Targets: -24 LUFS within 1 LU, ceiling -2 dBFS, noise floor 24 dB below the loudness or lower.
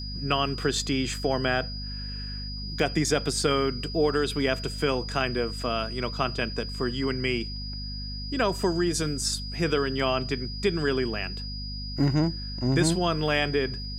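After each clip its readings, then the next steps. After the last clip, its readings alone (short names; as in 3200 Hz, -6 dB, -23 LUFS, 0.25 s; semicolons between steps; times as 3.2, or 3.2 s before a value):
hum 50 Hz; harmonics up to 250 Hz; hum level -33 dBFS; steady tone 4900 Hz; tone level -37 dBFS; loudness -27.5 LUFS; peak -10.0 dBFS; loudness target -24.0 LUFS
-> de-hum 50 Hz, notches 5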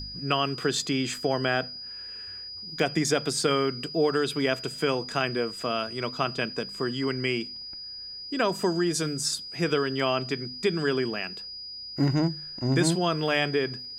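hum none; steady tone 4900 Hz; tone level -37 dBFS
-> notch 4900 Hz, Q 30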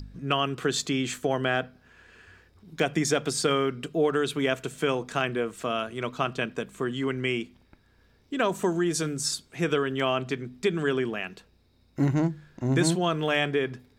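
steady tone none; loudness -27.5 LUFS; peak -11.0 dBFS; loudness target -24.0 LUFS
-> gain +3.5 dB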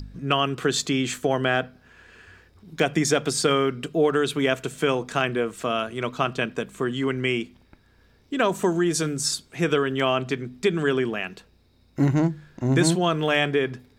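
loudness -24.0 LUFS; peak -7.5 dBFS; noise floor -59 dBFS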